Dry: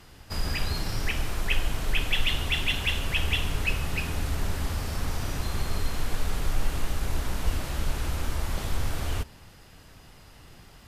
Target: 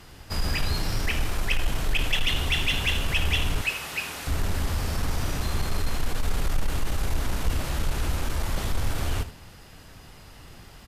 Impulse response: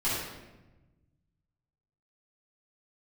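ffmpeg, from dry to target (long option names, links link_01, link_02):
-filter_complex "[0:a]asettb=1/sr,asplit=3[link_01][link_02][link_03];[link_01]atrim=end=3.614[link_04];[link_02]atrim=start=3.61:end=4.27,asetpts=PTS-STARTPTS,afade=type=in:duration=0.004:curve=qsin,afade=type=out:start_time=0.656:duration=0.004:curve=qsin,highpass=frequency=890:poles=1[link_05];[link_03]atrim=start=4.266[link_06];[link_04][link_05]acrossfade=duration=0.004:curve1=hsin:curve2=qsin[link_07];[link_07][link_06]acrossfade=duration=0.004:curve1=qsin:curve2=hsin,asoftclip=type=tanh:threshold=-19dB,aecho=1:1:78:0.2,volume=3.5dB"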